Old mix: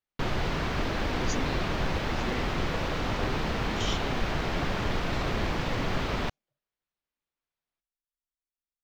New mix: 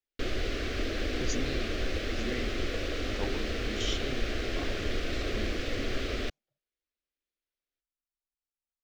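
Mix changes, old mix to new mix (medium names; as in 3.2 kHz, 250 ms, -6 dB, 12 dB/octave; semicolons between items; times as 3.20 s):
background: add static phaser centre 380 Hz, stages 4; master: add peaking EQ 13 kHz -4.5 dB 0.24 oct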